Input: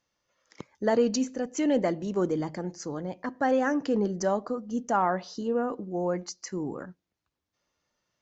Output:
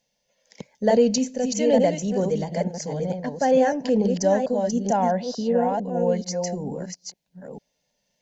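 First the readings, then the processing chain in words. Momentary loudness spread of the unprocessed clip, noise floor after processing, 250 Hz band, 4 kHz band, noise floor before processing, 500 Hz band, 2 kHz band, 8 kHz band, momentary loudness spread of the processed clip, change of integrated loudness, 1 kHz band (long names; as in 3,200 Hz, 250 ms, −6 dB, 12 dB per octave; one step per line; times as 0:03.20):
11 LU, −75 dBFS, +5.0 dB, +7.5 dB, −85 dBFS, +7.0 dB, +0.5 dB, can't be measured, 13 LU, +6.0 dB, +4.5 dB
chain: delay that plays each chunk backwards 446 ms, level −4.5 dB
phaser with its sweep stopped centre 330 Hz, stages 6
level +7 dB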